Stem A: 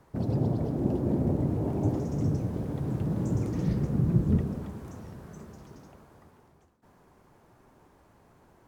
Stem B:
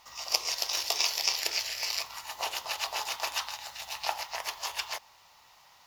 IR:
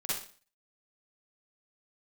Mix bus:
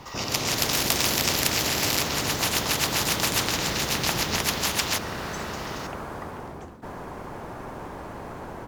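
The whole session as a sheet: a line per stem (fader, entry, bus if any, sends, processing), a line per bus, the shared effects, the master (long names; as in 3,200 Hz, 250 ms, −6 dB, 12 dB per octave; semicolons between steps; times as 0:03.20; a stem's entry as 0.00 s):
−3.5 dB, 0.00 s, no send, no processing
−5.0 dB, 0.00 s, no send, no processing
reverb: not used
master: high-shelf EQ 4,000 Hz −8.5 dB; automatic gain control gain up to 12 dB; every bin compressed towards the loudest bin 4 to 1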